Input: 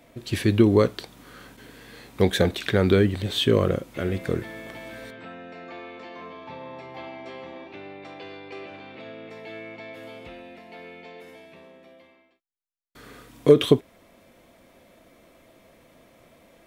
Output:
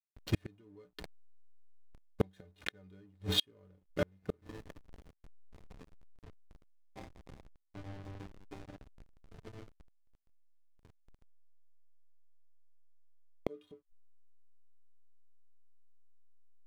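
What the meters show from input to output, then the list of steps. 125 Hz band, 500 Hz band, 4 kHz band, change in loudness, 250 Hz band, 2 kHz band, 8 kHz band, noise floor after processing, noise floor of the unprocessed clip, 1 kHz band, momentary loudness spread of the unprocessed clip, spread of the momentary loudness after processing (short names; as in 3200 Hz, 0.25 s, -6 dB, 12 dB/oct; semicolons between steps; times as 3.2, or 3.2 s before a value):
-17.0 dB, -21.5 dB, -9.0 dB, -18.0 dB, -20.0 dB, -16.0 dB, -12.0 dB, -73 dBFS, -58 dBFS, -17.5 dB, 22 LU, 22 LU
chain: metallic resonator 89 Hz, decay 0.26 s, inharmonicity 0.03; backlash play -36 dBFS; flipped gate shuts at -25 dBFS, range -40 dB; gain +8 dB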